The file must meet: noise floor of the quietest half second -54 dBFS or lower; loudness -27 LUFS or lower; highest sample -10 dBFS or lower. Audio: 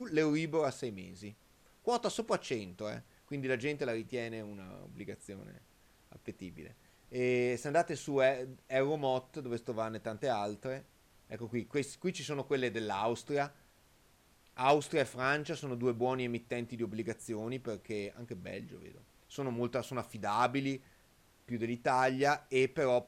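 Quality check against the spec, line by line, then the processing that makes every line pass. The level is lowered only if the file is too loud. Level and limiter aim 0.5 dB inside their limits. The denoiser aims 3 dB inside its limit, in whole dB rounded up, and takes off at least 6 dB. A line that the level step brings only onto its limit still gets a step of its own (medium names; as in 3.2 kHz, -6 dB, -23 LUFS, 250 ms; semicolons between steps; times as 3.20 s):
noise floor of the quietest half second -66 dBFS: pass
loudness -35.0 LUFS: pass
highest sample -15.5 dBFS: pass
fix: none needed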